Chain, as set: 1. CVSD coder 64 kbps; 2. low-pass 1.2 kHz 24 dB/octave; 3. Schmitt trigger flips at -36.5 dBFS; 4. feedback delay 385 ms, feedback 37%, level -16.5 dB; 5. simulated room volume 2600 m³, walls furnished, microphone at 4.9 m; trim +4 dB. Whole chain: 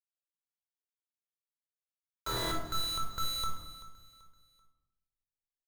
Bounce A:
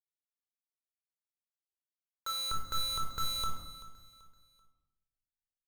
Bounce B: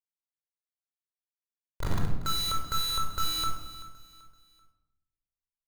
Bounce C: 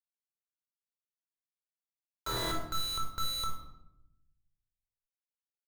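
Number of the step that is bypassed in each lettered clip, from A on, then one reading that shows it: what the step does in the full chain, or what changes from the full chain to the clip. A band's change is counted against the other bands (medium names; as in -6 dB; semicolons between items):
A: 1, 500 Hz band -9.0 dB; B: 2, 500 Hz band -6.5 dB; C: 4, momentary loudness spread change -9 LU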